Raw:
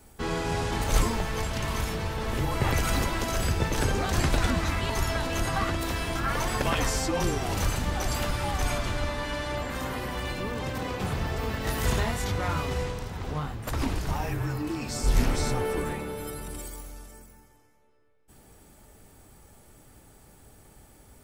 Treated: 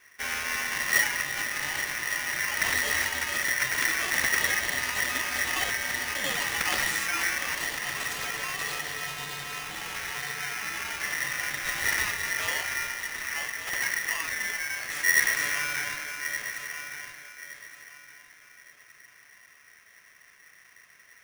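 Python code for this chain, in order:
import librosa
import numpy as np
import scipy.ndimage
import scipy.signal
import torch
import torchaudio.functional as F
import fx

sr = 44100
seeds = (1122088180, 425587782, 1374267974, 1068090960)

y = fx.wiener(x, sr, points=9)
y = fx.low_shelf(y, sr, hz=410.0, db=-6.5, at=(7.55, 9.95))
y = fx.echo_feedback(y, sr, ms=1168, feedback_pct=27, wet_db=-10.5)
y = y * np.sign(np.sin(2.0 * np.pi * 1900.0 * np.arange(len(y)) / sr))
y = y * librosa.db_to_amplitude(-2.0)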